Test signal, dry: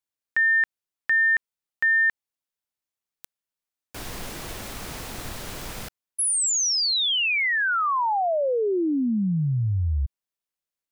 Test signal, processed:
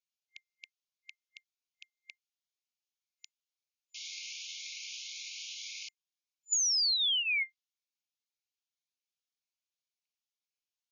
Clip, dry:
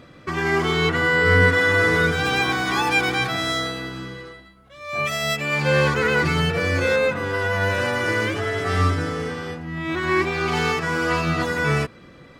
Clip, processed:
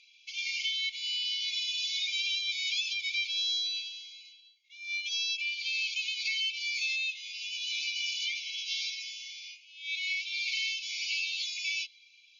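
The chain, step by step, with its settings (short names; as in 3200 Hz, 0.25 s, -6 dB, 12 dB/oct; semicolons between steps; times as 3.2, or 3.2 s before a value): FFT band-pass 2100–7000 Hz; dynamic EQ 3900 Hz, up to +7 dB, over -42 dBFS, Q 1.1; compressor 6:1, threshold -28 dBFS; cascading phaser rising 1.9 Hz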